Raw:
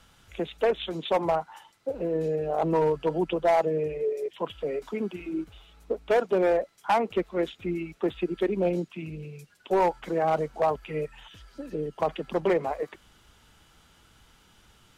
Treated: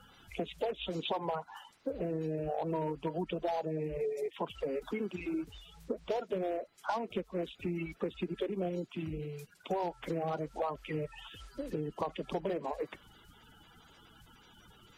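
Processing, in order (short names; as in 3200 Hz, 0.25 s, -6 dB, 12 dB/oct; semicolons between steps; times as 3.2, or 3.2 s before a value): bin magnitudes rounded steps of 30 dB; compressor, threshold -32 dBFS, peak gain reduction 12.5 dB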